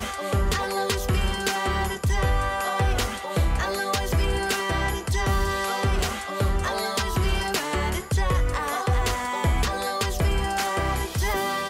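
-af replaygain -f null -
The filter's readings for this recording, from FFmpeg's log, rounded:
track_gain = +9.1 dB
track_peak = 0.138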